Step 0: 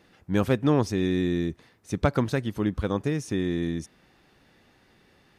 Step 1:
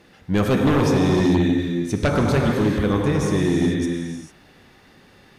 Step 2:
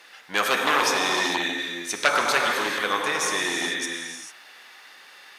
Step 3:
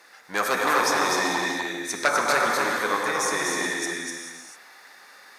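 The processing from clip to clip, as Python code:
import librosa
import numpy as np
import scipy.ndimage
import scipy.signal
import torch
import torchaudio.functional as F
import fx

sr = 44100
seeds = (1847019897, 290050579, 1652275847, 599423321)

y1 = fx.rev_gated(x, sr, seeds[0], gate_ms=470, shape='flat', drr_db=0.5)
y1 = fx.fold_sine(y1, sr, drive_db=7, ceiling_db=-8.0)
y1 = y1 * 10.0 ** (-4.5 / 20.0)
y2 = scipy.signal.sosfilt(scipy.signal.butter(2, 1100.0, 'highpass', fs=sr, output='sos'), y1)
y2 = y2 * 10.0 ** (8.0 / 20.0)
y3 = fx.peak_eq(y2, sr, hz=3000.0, db=-13.0, octaves=0.57)
y3 = y3 + 10.0 ** (-4.0 / 20.0) * np.pad(y3, (int(249 * sr / 1000.0), 0))[:len(y3)]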